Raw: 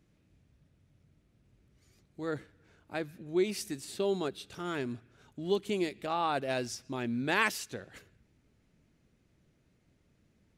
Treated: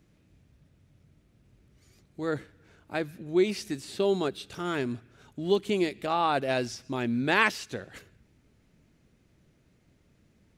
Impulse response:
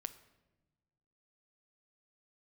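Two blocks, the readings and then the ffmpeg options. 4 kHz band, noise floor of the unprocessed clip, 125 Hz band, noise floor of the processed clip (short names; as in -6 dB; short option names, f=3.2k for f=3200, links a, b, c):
+4.5 dB, -71 dBFS, +5.0 dB, -66 dBFS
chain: -filter_complex "[0:a]acrossover=split=5500[a][b];[b]acompressor=threshold=-53dB:ratio=4:attack=1:release=60[c];[a][c]amix=inputs=2:normalize=0,volume=5dB"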